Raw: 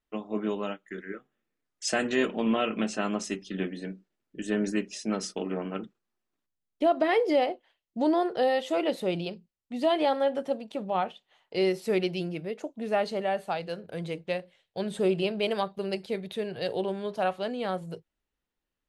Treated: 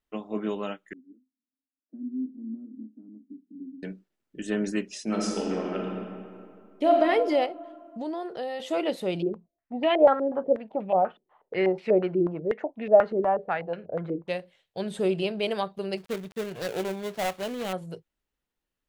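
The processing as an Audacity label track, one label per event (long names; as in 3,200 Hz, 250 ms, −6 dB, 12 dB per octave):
0.930000	3.830000	flat-topped band-pass 260 Hz, Q 6.1
5.030000	6.960000	thrown reverb, RT60 2.3 s, DRR −1 dB
7.460000	8.600000	downward compressor 2 to 1, threshold −36 dBFS
9.220000	14.280000	low-pass on a step sequencer 8.2 Hz 360–2,400 Hz
15.970000	17.730000	gap after every zero crossing of 0.24 ms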